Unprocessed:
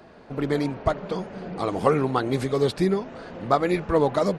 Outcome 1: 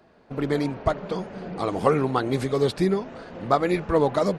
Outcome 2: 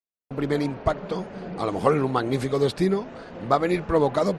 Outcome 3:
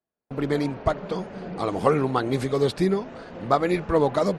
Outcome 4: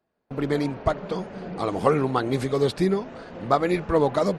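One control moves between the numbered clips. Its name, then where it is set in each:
noise gate, range: −8, −60, −42, −29 decibels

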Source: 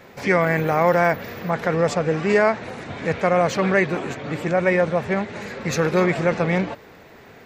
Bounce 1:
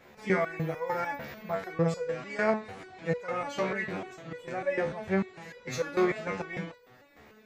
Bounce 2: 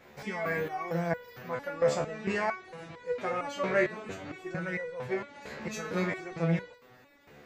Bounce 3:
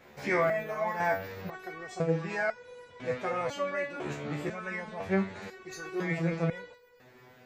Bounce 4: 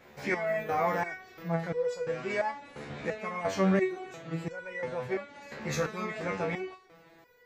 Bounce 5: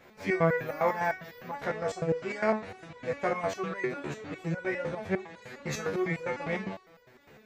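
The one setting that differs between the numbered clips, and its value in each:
step-sequenced resonator, speed: 6.7, 4.4, 2, 2.9, 9.9 Hertz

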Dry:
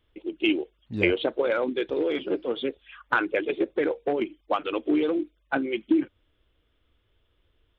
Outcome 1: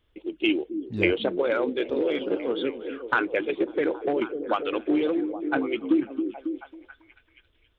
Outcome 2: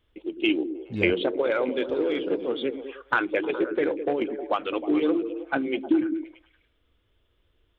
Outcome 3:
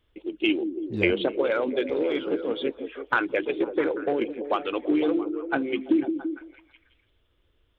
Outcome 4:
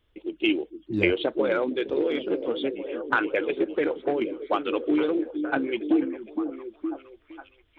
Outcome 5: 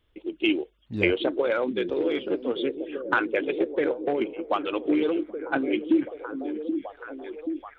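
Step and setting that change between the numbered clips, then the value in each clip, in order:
echo through a band-pass that steps, delay time: 273, 104, 168, 464, 779 milliseconds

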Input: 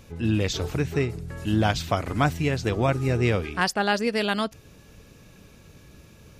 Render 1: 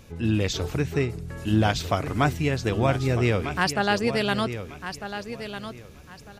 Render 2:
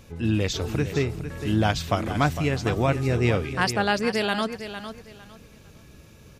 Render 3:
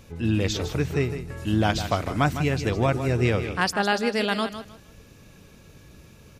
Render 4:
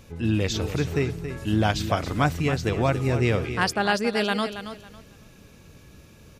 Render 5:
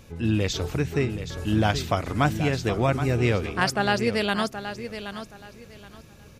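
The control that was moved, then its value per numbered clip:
repeating echo, delay time: 1,250, 455, 155, 276, 774 milliseconds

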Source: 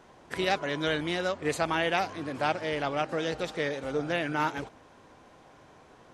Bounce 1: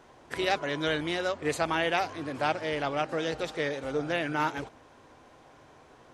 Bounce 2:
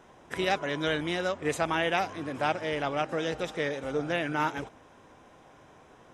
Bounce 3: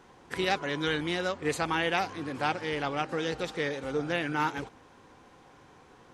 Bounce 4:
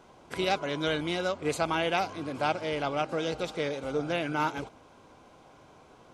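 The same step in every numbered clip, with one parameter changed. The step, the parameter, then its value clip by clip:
notch filter, centre frequency: 190, 4,400, 630, 1,800 Hertz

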